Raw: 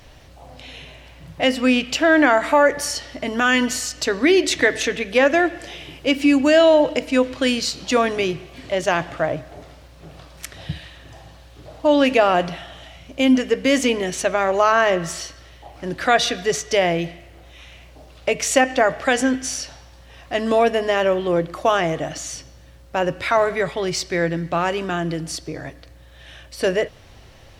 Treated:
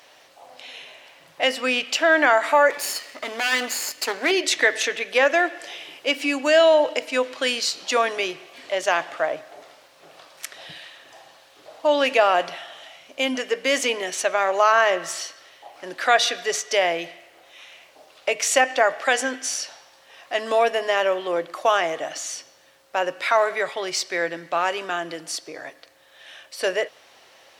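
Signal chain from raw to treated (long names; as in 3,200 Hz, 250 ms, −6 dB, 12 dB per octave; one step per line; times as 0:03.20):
0:02.70–0:04.31: lower of the sound and its delayed copy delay 0.42 ms
high-pass filter 550 Hz 12 dB per octave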